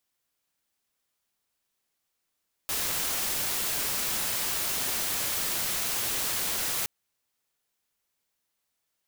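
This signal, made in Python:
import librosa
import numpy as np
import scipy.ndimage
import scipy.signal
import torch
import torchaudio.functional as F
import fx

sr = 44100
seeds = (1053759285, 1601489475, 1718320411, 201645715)

y = fx.noise_colour(sr, seeds[0], length_s=4.17, colour='white', level_db=-29.5)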